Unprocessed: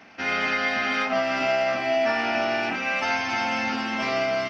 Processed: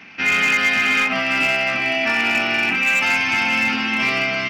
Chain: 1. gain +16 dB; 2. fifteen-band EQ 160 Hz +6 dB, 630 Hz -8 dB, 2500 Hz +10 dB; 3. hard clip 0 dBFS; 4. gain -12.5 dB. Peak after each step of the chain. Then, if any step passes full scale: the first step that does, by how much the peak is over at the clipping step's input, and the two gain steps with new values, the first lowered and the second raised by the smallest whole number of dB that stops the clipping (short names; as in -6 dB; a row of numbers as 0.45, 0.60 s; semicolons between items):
+3.5, +7.5, 0.0, -12.5 dBFS; step 1, 7.5 dB; step 1 +8 dB, step 4 -4.5 dB